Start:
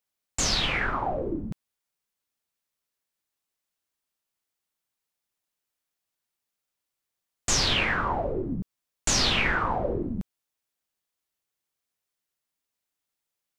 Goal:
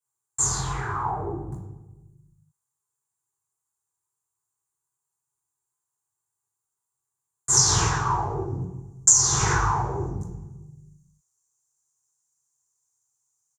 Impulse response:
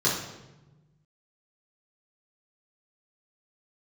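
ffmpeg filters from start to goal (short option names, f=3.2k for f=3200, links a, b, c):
-filter_complex "[0:a]asetnsamples=n=441:p=0,asendcmd='7.57 equalizer g 13.5',equalizer=f=6k:w=1.8:g=-3.5,agate=range=-8dB:threshold=-23dB:ratio=16:detection=peak,firequalizer=gain_entry='entry(100,0);entry(220,-21);entry(400,-8);entry(570,-21);entry(820,1);entry(1800,-15);entry(2800,-21);entry(4900,-14);entry(7700,12);entry(13000,-2)':delay=0.05:min_phase=1[a];[1:a]atrim=start_sample=2205[b];[a][b]afir=irnorm=-1:irlink=0,acompressor=threshold=-15dB:ratio=6"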